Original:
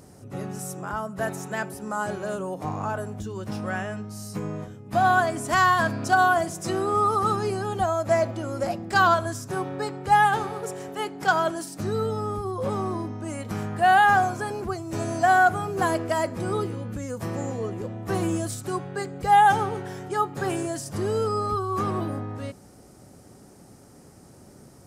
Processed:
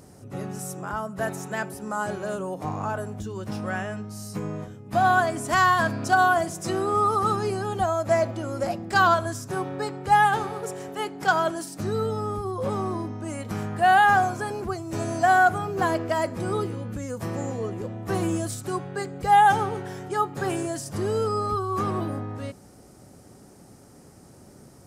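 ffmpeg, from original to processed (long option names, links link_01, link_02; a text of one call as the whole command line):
ffmpeg -i in.wav -filter_complex "[0:a]asettb=1/sr,asplit=3[link_01][link_02][link_03];[link_01]atrim=end=15.584[link_04];[link_02]atrim=start=15.58:end=16.22,asetpts=PTS-STARTPTS,afade=type=in:duration=0.004:curve=qsin,afade=type=out:start_time=0.636:duration=0.004:curve=qsin,equalizer=frequency=9500:width_type=o:width=0.69:gain=-8[link_05];[link_03]atrim=start=16.216[link_06];[link_04][link_05]acrossfade=duration=0.004:curve1=hsin:curve2=qsin[link_07];[link_07][link_06]acrossfade=duration=0.004:curve1=qsin:curve2=hsin" out.wav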